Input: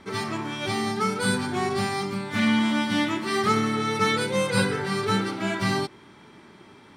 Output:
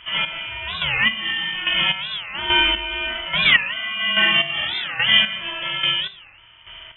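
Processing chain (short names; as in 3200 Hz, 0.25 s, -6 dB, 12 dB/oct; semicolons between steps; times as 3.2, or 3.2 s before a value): Schroeder reverb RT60 1 s, combs from 26 ms, DRR -3 dB; chopper 1.2 Hz, depth 65%, duty 30%; dynamic EQ 2100 Hz, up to -4 dB, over -37 dBFS, Q 3.1; inverted band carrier 3300 Hz; 1.01–3.18 bell 210 Hz +14 dB 0.34 oct; record warp 45 rpm, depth 250 cents; gain +5 dB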